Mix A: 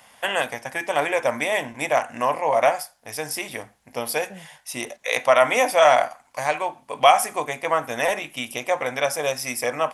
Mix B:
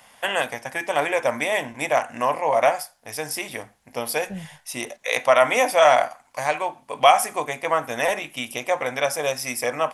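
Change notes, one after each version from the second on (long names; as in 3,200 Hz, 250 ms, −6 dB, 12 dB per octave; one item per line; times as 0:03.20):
second voice: remove resonant band-pass 860 Hz, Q 0.6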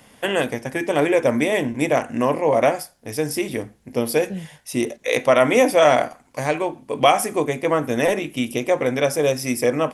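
second voice: add spectral tilt +3.5 dB per octave
master: add low shelf with overshoot 530 Hz +11 dB, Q 1.5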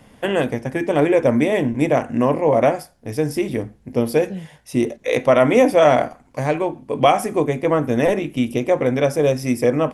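first voice: add spectral tilt −2 dB per octave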